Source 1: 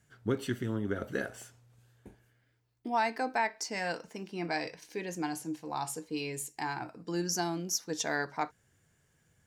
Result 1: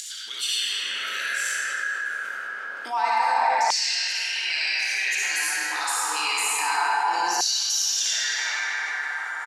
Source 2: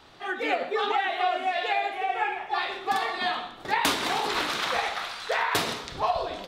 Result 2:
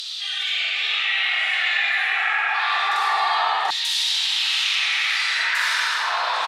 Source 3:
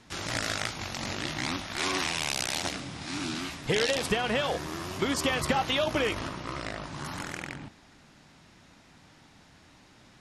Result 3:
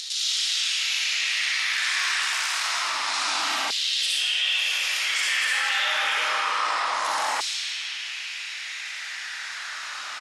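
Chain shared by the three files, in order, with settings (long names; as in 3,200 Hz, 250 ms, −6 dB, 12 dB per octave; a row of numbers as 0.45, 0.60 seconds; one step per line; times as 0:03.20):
reverb reduction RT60 0.96 s
dynamic equaliser 910 Hz, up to +4 dB, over −46 dBFS, Q 5.4
low-pass filter 10,000 Hz 12 dB per octave
soft clipping −15.5 dBFS
high-shelf EQ 3,200 Hz +9.5 dB
on a send: repeating echo 157 ms, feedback 51%, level −15.5 dB
on the sum: brickwall limiter −26 dBFS
comb and all-pass reverb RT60 3.6 s, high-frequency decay 0.65×, pre-delay 20 ms, DRR −9.5 dB
upward compression, threshold −42 dBFS
auto-filter high-pass saw down 0.27 Hz 800–4,000 Hz
high-pass filter 120 Hz
envelope flattener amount 50%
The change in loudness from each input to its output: +11.0, +7.5, +6.5 LU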